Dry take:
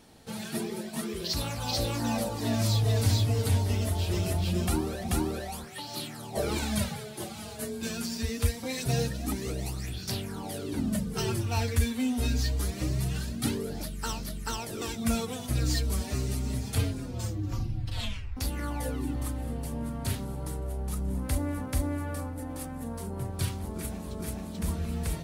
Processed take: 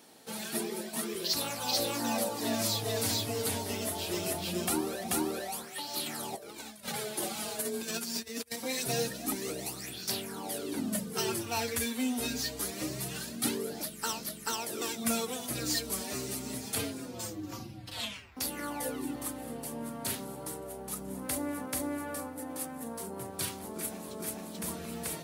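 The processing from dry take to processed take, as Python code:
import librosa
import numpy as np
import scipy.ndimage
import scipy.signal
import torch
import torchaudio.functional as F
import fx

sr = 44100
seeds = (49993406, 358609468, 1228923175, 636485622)

y = fx.over_compress(x, sr, threshold_db=-36.0, ratio=-0.5, at=(6.06, 8.56))
y = scipy.signal.sosfilt(scipy.signal.butter(2, 260.0, 'highpass', fs=sr, output='sos'), y)
y = fx.high_shelf(y, sr, hz=9200.0, db=8.0)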